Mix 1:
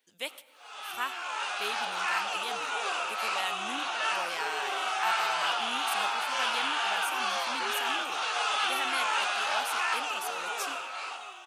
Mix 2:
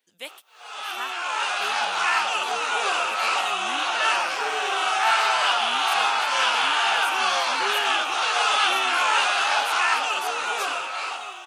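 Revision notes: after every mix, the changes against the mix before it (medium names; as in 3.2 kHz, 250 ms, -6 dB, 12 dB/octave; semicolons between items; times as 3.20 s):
speech: send off; background +8.0 dB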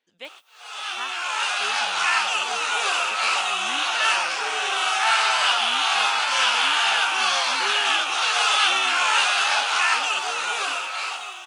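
speech: add distance through air 110 m; background: add tilt shelf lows -4.5 dB, about 1.3 kHz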